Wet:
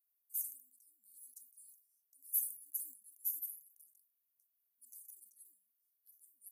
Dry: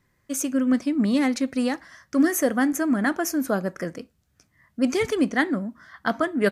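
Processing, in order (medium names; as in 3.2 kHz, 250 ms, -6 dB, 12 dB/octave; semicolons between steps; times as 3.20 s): inverse Chebyshev high-pass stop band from 2.8 kHz, stop band 80 dB; in parallel at -8 dB: saturation -37.5 dBFS, distortion -8 dB; on the sum: decay stretcher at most 120 dB/s; trim +1 dB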